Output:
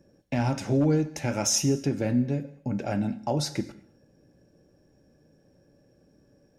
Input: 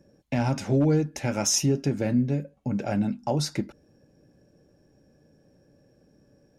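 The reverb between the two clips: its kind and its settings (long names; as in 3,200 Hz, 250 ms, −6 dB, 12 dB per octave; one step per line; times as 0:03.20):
reverb whose tail is shaped and stops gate 280 ms falling, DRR 11.5 dB
level −1 dB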